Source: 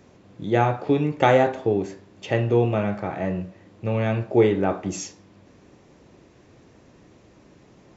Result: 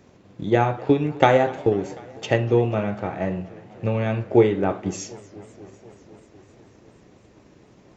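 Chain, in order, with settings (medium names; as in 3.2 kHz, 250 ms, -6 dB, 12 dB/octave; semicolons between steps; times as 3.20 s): 1.57–2.38 s: treble shelf 6.2 kHz +6.5 dB; transient shaper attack +5 dB, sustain -1 dB; modulated delay 247 ms, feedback 77%, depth 195 cents, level -22.5 dB; trim -1 dB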